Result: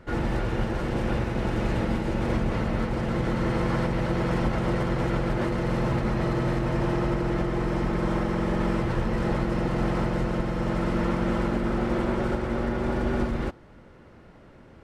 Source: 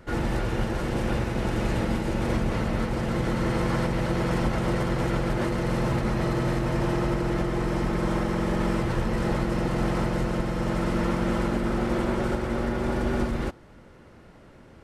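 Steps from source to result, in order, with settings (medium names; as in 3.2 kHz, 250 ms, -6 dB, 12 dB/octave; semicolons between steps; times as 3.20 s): treble shelf 6.3 kHz -10 dB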